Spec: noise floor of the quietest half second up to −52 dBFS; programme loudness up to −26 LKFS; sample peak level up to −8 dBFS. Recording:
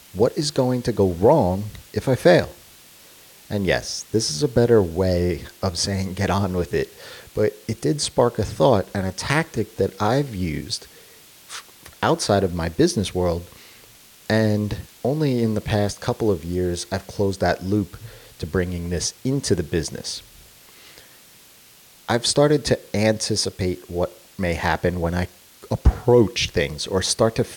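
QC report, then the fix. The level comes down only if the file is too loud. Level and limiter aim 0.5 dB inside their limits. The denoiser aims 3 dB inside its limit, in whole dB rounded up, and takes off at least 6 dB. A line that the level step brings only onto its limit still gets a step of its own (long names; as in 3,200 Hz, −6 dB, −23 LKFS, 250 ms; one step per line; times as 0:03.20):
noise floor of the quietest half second −50 dBFS: out of spec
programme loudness −22.0 LKFS: out of spec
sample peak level −4.0 dBFS: out of spec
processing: level −4.5 dB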